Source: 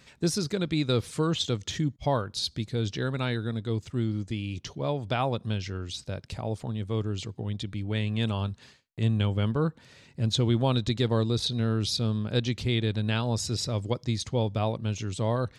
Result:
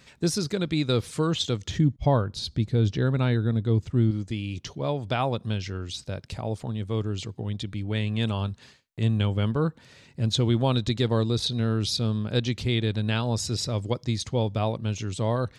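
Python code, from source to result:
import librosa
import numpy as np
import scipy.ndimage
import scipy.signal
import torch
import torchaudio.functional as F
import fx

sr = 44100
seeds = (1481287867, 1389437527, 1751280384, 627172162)

y = fx.tilt_eq(x, sr, slope=-2.0, at=(1.68, 4.11))
y = y * librosa.db_to_amplitude(1.5)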